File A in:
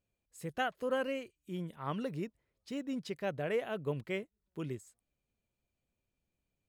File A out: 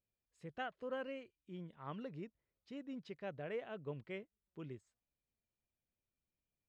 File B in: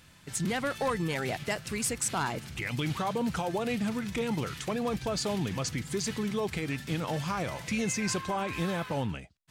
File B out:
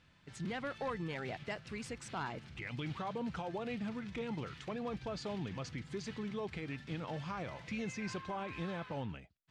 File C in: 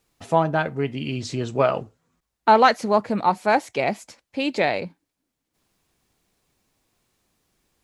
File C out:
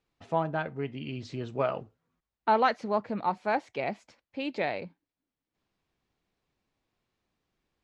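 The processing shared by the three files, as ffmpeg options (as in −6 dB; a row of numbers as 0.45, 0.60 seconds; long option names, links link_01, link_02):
-af "lowpass=4000,volume=-9dB"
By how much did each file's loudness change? −9.0, −9.5, −9.0 LU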